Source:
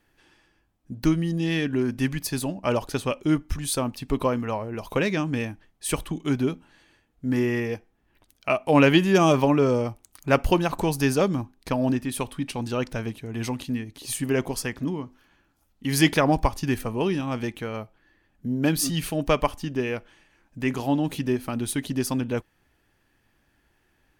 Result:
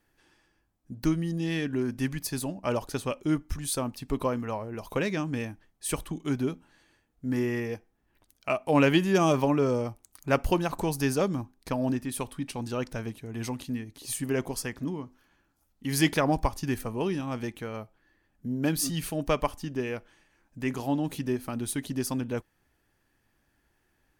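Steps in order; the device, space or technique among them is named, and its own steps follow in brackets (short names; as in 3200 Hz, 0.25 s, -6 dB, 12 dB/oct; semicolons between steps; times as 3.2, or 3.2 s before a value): exciter from parts (in parallel at -7.5 dB: HPF 2400 Hz 12 dB/oct + soft clip -27.5 dBFS, distortion -9 dB + HPF 2600 Hz 12 dB/oct); on the sum: gain -4.5 dB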